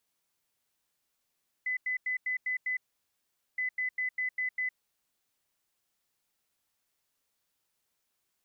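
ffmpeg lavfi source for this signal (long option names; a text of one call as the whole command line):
ffmpeg -f lavfi -i "aevalsrc='0.0376*sin(2*PI*2010*t)*clip(min(mod(mod(t,1.92),0.2),0.11-mod(mod(t,1.92),0.2))/0.005,0,1)*lt(mod(t,1.92),1.2)':duration=3.84:sample_rate=44100" out.wav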